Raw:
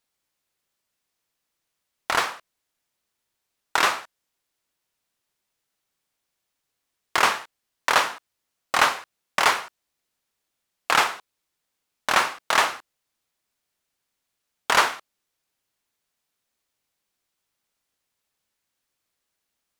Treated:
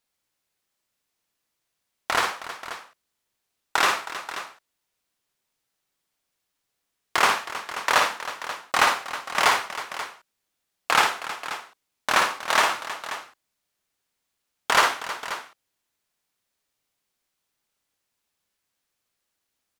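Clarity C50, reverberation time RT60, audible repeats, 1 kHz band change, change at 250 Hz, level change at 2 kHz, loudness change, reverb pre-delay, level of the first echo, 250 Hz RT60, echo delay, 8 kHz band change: no reverb audible, no reverb audible, 3, +0.5 dB, 0.0 dB, +0.5 dB, −1.0 dB, no reverb audible, −6.0 dB, no reverb audible, 56 ms, +0.5 dB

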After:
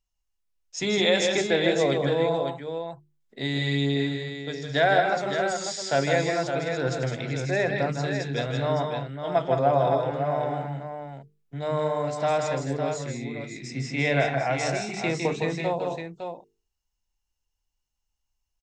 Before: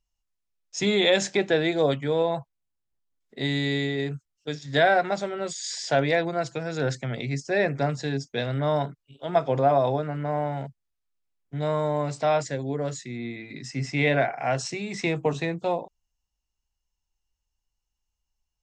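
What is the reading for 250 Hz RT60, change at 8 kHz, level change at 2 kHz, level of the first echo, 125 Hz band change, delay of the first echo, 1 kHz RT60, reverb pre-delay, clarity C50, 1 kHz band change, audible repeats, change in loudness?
no reverb audible, +0.5 dB, +0.5 dB, −5.5 dB, +0.5 dB, 157 ms, no reverb audible, no reverb audible, no reverb audible, +0.5 dB, 3, 0.0 dB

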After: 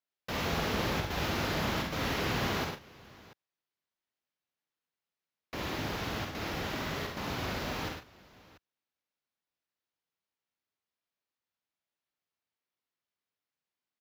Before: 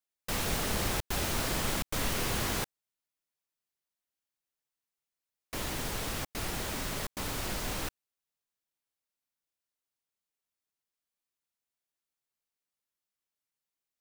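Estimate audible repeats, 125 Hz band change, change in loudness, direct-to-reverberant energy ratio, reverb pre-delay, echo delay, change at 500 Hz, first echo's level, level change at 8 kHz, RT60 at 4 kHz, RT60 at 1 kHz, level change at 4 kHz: 4, +1.5 dB, −0.5 dB, no reverb audible, no reverb audible, 48 ms, +2.5 dB, −5.5 dB, −9.5 dB, no reverb audible, no reverb audible, −0.5 dB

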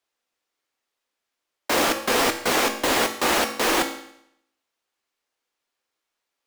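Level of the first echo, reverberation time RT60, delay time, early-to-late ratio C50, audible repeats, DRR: no echo audible, 0.75 s, no echo audible, 9.5 dB, no echo audible, 5.0 dB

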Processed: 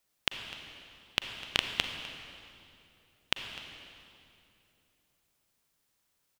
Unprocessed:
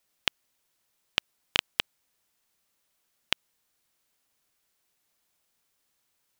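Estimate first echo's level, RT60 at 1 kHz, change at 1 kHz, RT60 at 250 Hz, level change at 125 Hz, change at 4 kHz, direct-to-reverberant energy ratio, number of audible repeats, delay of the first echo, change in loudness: −17.0 dB, 2.6 s, −1.0 dB, 3.3 s, +2.0 dB, −1.5 dB, 5.5 dB, 1, 252 ms, −3.5 dB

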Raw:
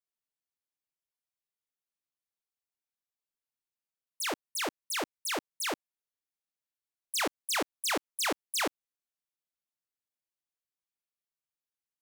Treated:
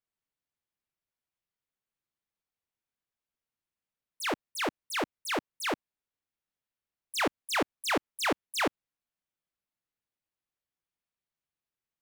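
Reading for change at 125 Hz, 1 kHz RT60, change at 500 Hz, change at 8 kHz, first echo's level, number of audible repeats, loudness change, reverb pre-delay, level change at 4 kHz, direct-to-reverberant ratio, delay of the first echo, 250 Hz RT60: +7.5 dB, no reverb audible, +3.5 dB, −5.0 dB, no echo audible, no echo audible, +0.5 dB, no reverb audible, −1.0 dB, no reverb audible, no echo audible, no reverb audible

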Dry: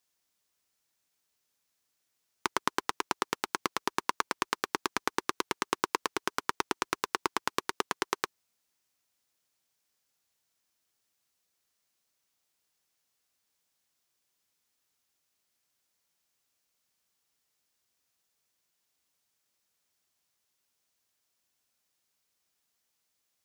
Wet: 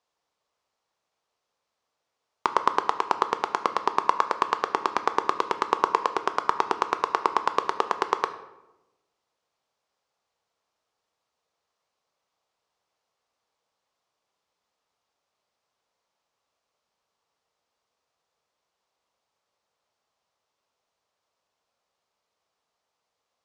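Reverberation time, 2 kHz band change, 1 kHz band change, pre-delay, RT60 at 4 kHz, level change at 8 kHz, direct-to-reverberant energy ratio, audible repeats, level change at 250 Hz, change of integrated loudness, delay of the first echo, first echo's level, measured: 1.0 s, +1.5 dB, +9.5 dB, 11 ms, 0.60 s, −6.5 dB, 9.0 dB, no echo audible, +1.5 dB, +7.0 dB, no echo audible, no echo audible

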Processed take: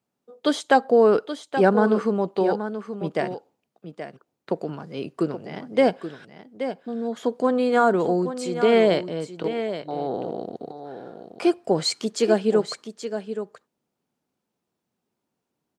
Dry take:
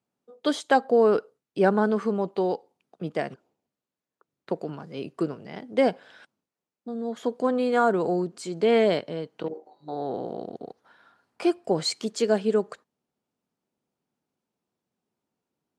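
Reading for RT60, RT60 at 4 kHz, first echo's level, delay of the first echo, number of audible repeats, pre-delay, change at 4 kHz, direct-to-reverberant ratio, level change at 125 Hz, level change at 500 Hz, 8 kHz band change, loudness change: no reverb audible, no reverb audible, −10.0 dB, 827 ms, 1, no reverb audible, +3.5 dB, no reverb audible, +3.5 dB, +3.5 dB, +3.5 dB, +2.5 dB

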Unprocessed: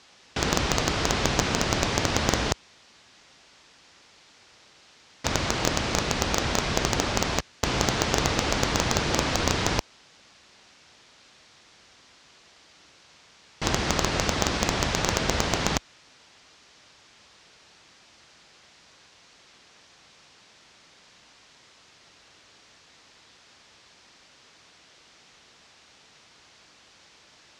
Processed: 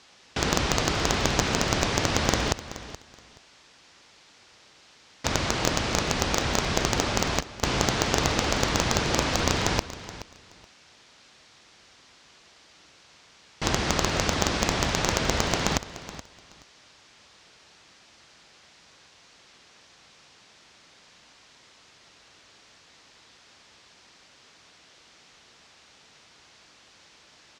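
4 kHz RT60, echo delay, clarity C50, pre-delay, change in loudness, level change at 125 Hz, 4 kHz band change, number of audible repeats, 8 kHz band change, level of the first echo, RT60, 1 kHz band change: no reverb audible, 425 ms, no reverb audible, no reverb audible, 0.0 dB, 0.0 dB, 0.0 dB, 2, 0.0 dB, −15.0 dB, no reverb audible, 0.0 dB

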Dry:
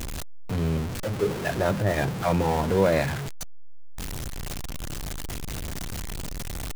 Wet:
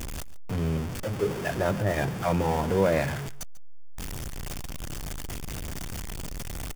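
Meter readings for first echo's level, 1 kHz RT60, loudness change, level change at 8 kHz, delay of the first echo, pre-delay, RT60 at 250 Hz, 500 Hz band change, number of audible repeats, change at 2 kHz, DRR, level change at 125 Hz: −18.5 dB, no reverb audible, −2.0 dB, −2.0 dB, 142 ms, no reverb audible, no reverb audible, −2.0 dB, 1, −2.0 dB, no reverb audible, −2.0 dB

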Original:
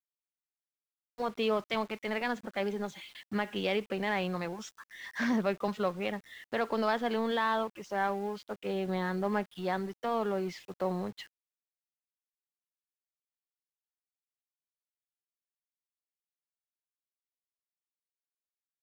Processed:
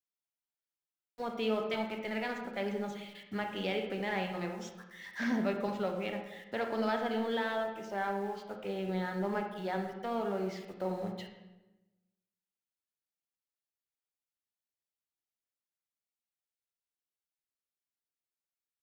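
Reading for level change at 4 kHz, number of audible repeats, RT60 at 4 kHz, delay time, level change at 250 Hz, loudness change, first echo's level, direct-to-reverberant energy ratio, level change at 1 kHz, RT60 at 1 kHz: −3.0 dB, no echo audible, 0.75 s, no echo audible, −1.5 dB, −2.5 dB, no echo audible, 3.5 dB, −3.5 dB, 1.0 s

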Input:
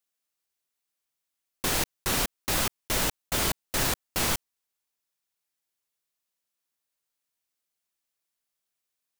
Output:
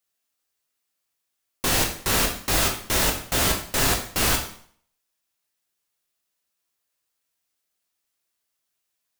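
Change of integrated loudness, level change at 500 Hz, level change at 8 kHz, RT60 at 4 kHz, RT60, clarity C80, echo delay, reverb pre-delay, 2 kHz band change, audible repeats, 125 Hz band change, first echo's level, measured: +5.5 dB, +5.5 dB, +5.5 dB, 0.50 s, 0.55 s, 12.0 dB, no echo audible, 5 ms, +5.5 dB, no echo audible, +6.0 dB, no echo audible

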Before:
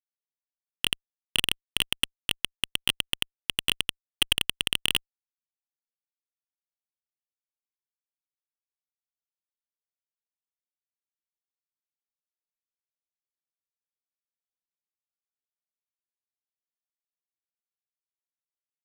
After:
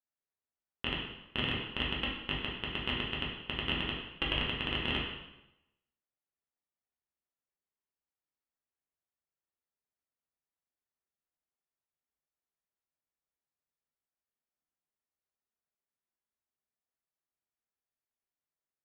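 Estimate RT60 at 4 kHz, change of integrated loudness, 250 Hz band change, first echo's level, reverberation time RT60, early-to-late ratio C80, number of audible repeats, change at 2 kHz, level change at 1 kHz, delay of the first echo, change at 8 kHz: 0.80 s, −7.0 dB, +4.5 dB, no echo audible, 0.90 s, 5.0 dB, no echo audible, −4.0 dB, +2.0 dB, no echo audible, below −35 dB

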